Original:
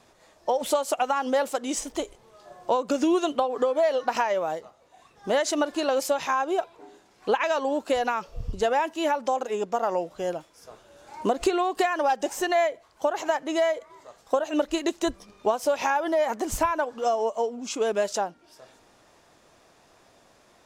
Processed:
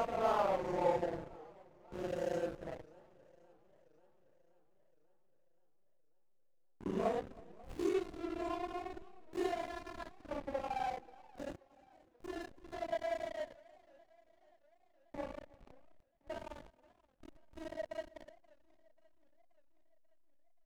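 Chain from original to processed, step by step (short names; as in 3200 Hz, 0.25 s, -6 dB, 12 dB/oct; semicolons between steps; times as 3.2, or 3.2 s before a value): Doppler pass-by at 8.5, 11 m/s, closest 4.3 m; Paulstretch 4.5×, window 0.05 s, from 9.53; backlash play -36 dBFS; echo 0.32 s -23 dB; warbling echo 0.533 s, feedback 60%, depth 192 cents, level -24 dB; gain +4 dB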